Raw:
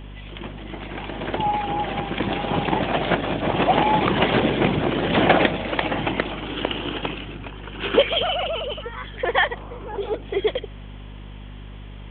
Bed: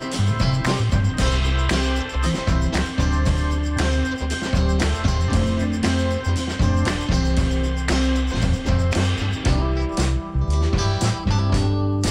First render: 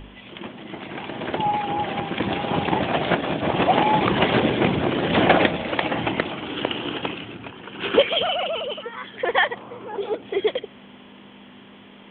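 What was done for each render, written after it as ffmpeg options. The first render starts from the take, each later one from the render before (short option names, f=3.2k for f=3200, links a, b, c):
-af "bandreject=f=50:t=h:w=4,bandreject=f=100:t=h:w=4,bandreject=f=150:t=h:w=4"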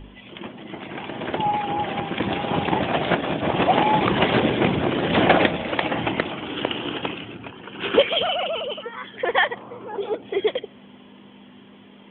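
-af "afftdn=nr=6:nf=-46"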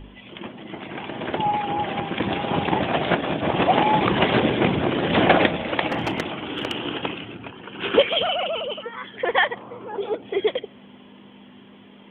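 -filter_complex "[0:a]asettb=1/sr,asplit=3[a][b][c];[a]atrim=end=5.874[d];[b]atrim=start=5.87:end=6.86,asetpts=PTS-STARTPTS,afade=t=in:d=0.004:c=qsin,afade=t=out:st=0.986:d=0.004:c=qsin,asoftclip=type=hard:threshold=-18dB[e];[c]atrim=start=6.856[f];[d][e]acrossfade=d=0.004:c1=hsin:c2=qsin[g];[g][f]acrossfade=d=0.004:c1=qsin:c2=hsin"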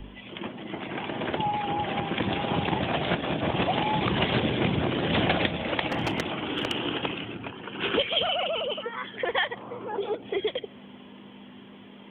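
-filter_complex "[0:a]acrossover=split=160|3000[a][b][c];[b]acompressor=threshold=-27dB:ratio=3[d];[a][d][c]amix=inputs=3:normalize=0"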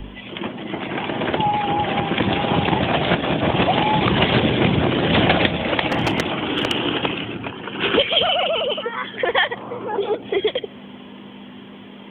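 -af "volume=8dB,alimiter=limit=-1dB:level=0:latency=1"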